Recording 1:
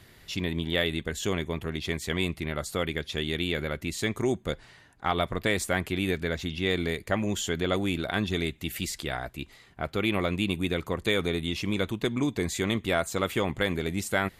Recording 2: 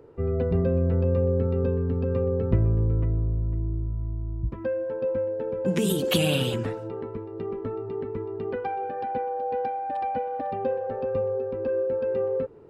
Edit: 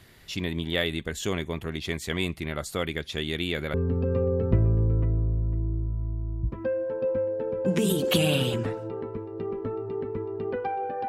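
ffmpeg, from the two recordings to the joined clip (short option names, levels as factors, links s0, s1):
-filter_complex "[0:a]apad=whole_dur=11.08,atrim=end=11.08,atrim=end=3.742[s0];[1:a]atrim=start=1.738:end=9.08[s1];[s0][s1]acrossfade=d=0.004:c1=hsin:c2=hsin"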